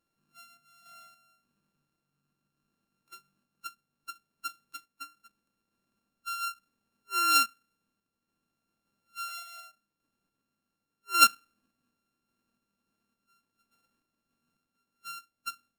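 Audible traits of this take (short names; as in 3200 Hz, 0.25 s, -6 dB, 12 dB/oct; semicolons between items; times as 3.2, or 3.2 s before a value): a buzz of ramps at a fixed pitch in blocks of 32 samples; random-step tremolo; AAC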